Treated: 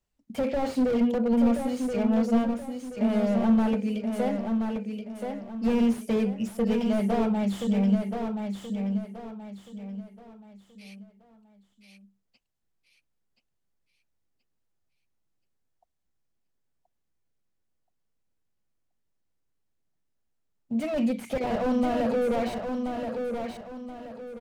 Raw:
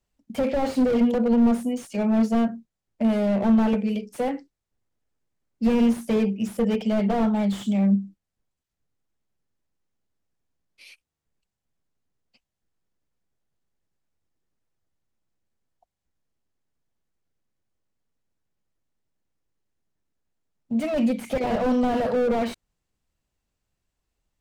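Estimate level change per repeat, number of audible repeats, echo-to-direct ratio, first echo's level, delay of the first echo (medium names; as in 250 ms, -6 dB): -9.0 dB, 4, -5.0 dB, -5.5 dB, 1027 ms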